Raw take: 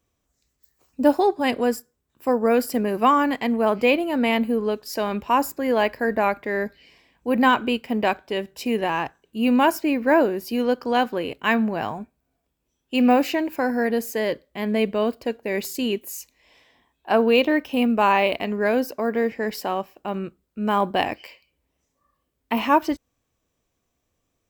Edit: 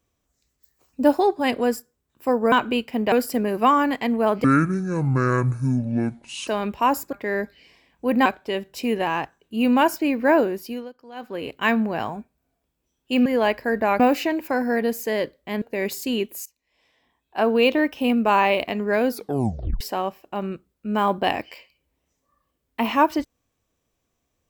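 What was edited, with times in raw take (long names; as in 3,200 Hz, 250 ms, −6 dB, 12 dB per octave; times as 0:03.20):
0:03.84–0:04.96: play speed 55%
0:05.61–0:06.35: move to 0:13.08
0:07.48–0:08.08: move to 0:02.52
0:10.33–0:11.36: duck −20.5 dB, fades 0.39 s
0:14.70–0:15.34: remove
0:16.18–0:17.43: fade in, from −23.5 dB
0:18.81: tape stop 0.72 s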